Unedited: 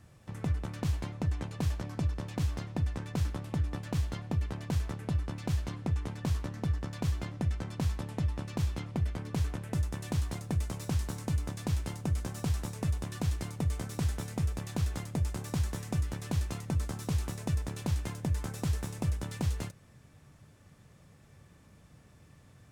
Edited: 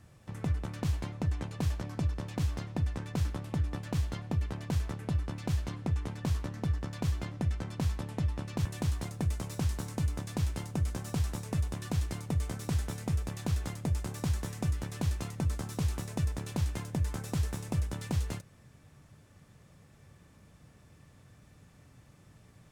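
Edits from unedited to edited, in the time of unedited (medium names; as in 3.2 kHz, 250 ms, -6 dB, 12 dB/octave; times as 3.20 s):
8.65–9.95 s: delete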